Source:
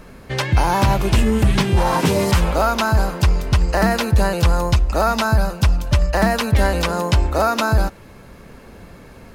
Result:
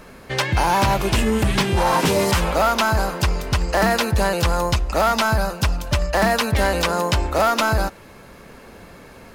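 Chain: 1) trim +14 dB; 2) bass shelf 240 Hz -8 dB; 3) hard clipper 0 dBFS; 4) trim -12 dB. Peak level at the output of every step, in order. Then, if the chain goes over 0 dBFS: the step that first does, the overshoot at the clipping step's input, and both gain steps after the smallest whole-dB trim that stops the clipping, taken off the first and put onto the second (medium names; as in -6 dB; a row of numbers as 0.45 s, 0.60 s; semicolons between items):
+7.5 dBFS, +7.5 dBFS, 0.0 dBFS, -12.0 dBFS; step 1, 7.5 dB; step 1 +6 dB, step 4 -4 dB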